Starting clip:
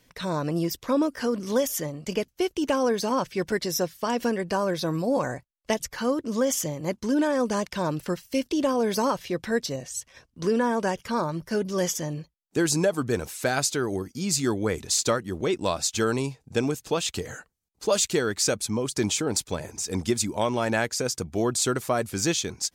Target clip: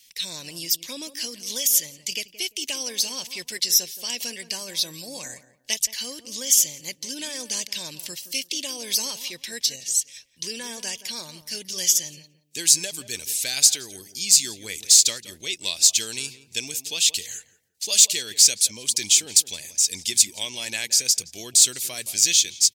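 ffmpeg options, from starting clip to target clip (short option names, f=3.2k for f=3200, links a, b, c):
-filter_complex "[0:a]aexciter=amount=14.4:drive=7.7:freq=2.1k,asplit=2[a][b];[b]adelay=172,lowpass=f=1.3k:p=1,volume=-12.5dB,asplit=2[c][d];[d]adelay=172,lowpass=f=1.3k:p=1,volume=0.27,asplit=2[e][f];[f]adelay=172,lowpass=f=1.3k:p=1,volume=0.27[g];[c][e][g]amix=inputs=3:normalize=0[h];[a][h]amix=inputs=2:normalize=0,volume=-16.5dB"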